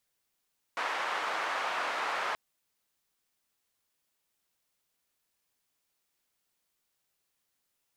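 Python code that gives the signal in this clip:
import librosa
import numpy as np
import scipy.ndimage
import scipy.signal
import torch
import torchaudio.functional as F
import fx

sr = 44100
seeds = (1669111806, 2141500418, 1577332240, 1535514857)

y = fx.band_noise(sr, seeds[0], length_s=1.58, low_hz=920.0, high_hz=1200.0, level_db=-33.0)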